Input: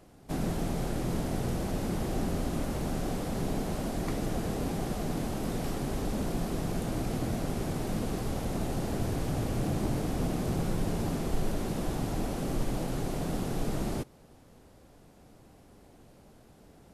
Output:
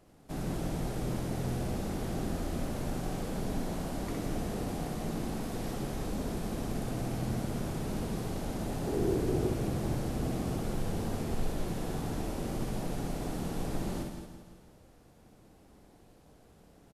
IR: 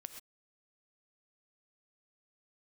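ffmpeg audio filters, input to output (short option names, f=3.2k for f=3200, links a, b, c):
-filter_complex "[0:a]asettb=1/sr,asplit=3[a][b][c];[a]atrim=end=8.864[d];[b]atrim=start=8.86:end=9.48,asetpts=PTS-STARTPTS,afade=t=in:d=0.004:c=qsin,afade=t=out:st=0.616:d=0.004:c=qsin,equalizer=f=370:w=2.7:g=15[e];[c]atrim=start=9.476[f];[d][e]acrossfade=d=0.004:c1=hsin:c2=qsin[g];[g][f]acrossfade=d=0.004:c1=qsin:c2=hsin,aecho=1:1:166|332|498|664|830|996:0.335|0.174|0.0906|0.0471|0.0245|0.0127,asplit=2[h][i];[1:a]atrim=start_sample=2205,asetrate=32634,aresample=44100,adelay=63[j];[i][j]afir=irnorm=-1:irlink=0,volume=1dB[k];[h][k]amix=inputs=2:normalize=0,volume=-5.5dB"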